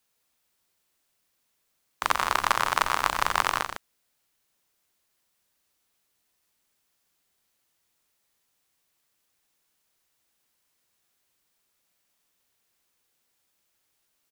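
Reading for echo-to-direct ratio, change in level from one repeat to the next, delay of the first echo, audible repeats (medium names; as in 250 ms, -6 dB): -6.0 dB, no regular repeats, 90 ms, 2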